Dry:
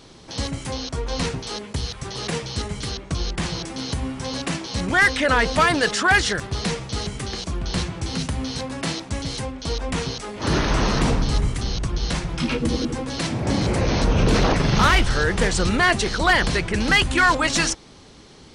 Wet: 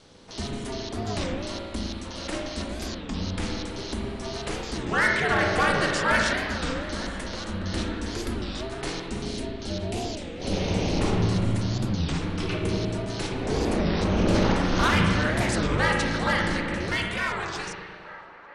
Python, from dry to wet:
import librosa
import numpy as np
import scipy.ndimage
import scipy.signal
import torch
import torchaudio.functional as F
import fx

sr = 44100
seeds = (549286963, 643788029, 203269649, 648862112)

y = fx.fade_out_tail(x, sr, length_s=2.75)
y = fx.band_shelf(y, sr, hz=1300.0, db=-13.0, octaves=1.2, at=(9.14, 11.01))
y = y * np.sin(2.0 * np.pi * 140.0 * np.arange(len(y)) / sr)
y = fx.echo_wet_bandpass(y, sr, ms=892, feedback_pct=64, hz=1000.0, wet_db=-16.5)
y = fx.rev_spring(y, sr, rt60_s=1.8, pass_ms=(36, 54), chirp_ms=30, drr_db=0.5)
y = fx.record_warp(y, sr, rpm=33.33, depth_cents=250.0)
y = F.gain(torch.from_numpy(y), -4.0).numpy()